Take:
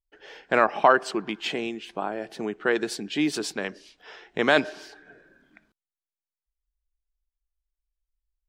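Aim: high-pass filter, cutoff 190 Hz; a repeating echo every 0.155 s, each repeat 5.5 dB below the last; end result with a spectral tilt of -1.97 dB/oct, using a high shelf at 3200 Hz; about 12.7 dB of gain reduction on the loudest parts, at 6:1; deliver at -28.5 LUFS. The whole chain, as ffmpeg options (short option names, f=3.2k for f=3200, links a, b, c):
-af "highpass=190,highshelf=f=3.2k:g=-6,acompressor=threshold=-26dB:ratio=6,aecho=1:1:155|310|465|620|775|930|1085:0.531|0.281|0.149|0.079|0.0419|0.0222|0.0118,volume=3.5dB"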